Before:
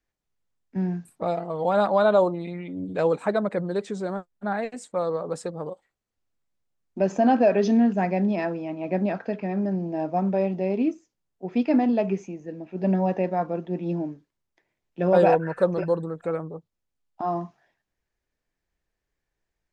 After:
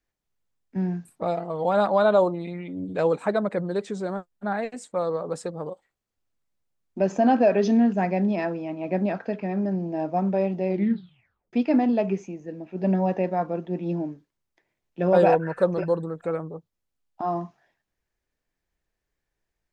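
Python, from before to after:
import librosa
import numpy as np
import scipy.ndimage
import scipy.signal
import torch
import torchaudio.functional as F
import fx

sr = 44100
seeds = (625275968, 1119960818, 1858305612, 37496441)

y = fx.edit(x, sr, fx.tape_stop(start_s=10.67, length_s=0.86), tone=tone)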